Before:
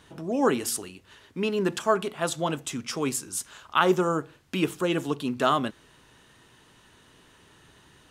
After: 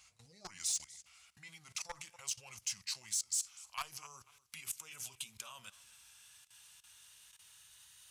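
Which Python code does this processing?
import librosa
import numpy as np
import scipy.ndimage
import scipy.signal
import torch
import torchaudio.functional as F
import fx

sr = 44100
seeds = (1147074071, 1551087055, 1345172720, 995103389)

p1 = fx.pitch_glide(x, sr, semitones=-5.5, runs='ending unshifted')
p2 = fx.level_steps(p1, sr, step_db=20)
p3 = scipy.signal.sosfilt(scipy.signal.butter(2, 47.0, 'highpass', fs=sr, output='sos'), p2)
p4 = scipy.signal.lfilter([1.0, -0.8], [1.0], p3)
p5 = fx.notch(p4, sr, hz=1800.0, q=20.0)
p6 = p5 + fx.echo_feedback(p5, sr, ms=244, feedback_pct=21, wet_db=-21, dry=0)
p7 = 10.0 ** (-34.5 / 20.0) * np.tanh(p6 / 10.0 ** (-34.5 / 20.0))
p8 = fx.tone_stack(p7, sr, knobs='10-0-10')
y = F.gain(torch.from_numpy(p8), 10.0).numpy()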